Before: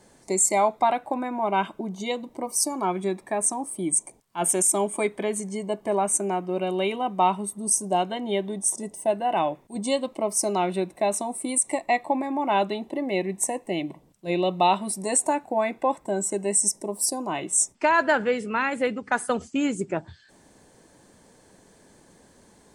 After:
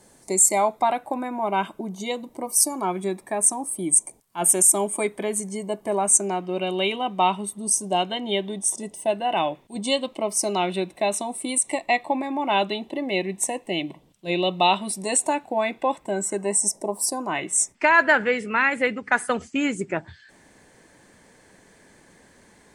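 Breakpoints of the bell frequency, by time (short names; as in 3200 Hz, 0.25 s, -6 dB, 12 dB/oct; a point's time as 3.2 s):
bell +9 dB 0.96 oct
5.93 s 12000 Hz
6.46 s 3200 Hz
15.97 s 3200 Hz
16.77 s 620 Hz
17.38 s 2000 Hz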